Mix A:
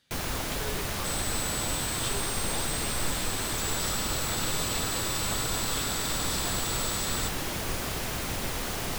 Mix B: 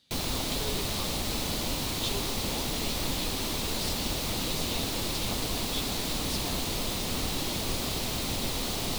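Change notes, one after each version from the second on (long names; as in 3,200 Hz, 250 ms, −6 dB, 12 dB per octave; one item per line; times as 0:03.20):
second sound: muted
master: add graphic EQ with 15 bands 250 Hz +4 dB, 1,600 Hz −8 dB, 4,000 Hz +7 dB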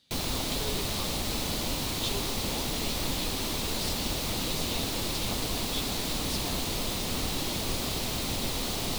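nothing changed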